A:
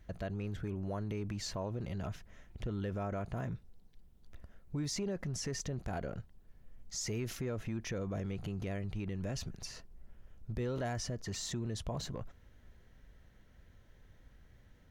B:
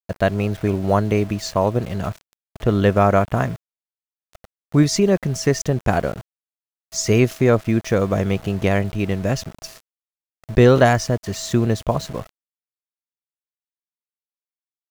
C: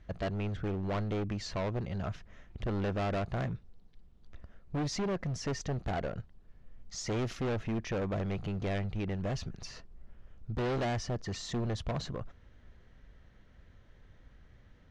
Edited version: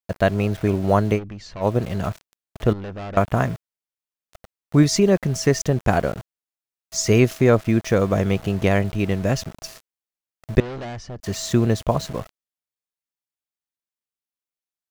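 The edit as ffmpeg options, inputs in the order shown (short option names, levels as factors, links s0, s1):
-filter_complex "[2:a]asplit=3[s0][s1][s2];[1:a]asplit=4[s3][s4][s5][s6];[s3]atrim=end=1.2[s7];[s0]atrim=start=1.14:end=1.66[s8];[s4]atrim=start=1.6:end=2.732[s9];[s1]atrim=start=2.728:end=3.172[s10];[s5]atrim=start=3.168:end=10.602[s11];[s2]atrim=start=10.598:end=11.202[s12];[s6]atrim=start=11.198[s13];[s7][s8]acrossfade=d=0.06:c1=tri:c2=tri[s14];[s14][s9]acrossfade=d=0.06:c1=tri:c2=tri[s15];[s15][s10]acrossfade=d=0.004:c1=hsin:c2=hsin[s16];[s16][s11]acrossfade=d=0.004:c1=hsin:c2=hsin[s17];[s17][s12]acrossfade=d=0.004:c1=hsin:c2=hsin[s18];[s18][s13]acrossfade=d=0.004:c1=hsin:c2=hsin"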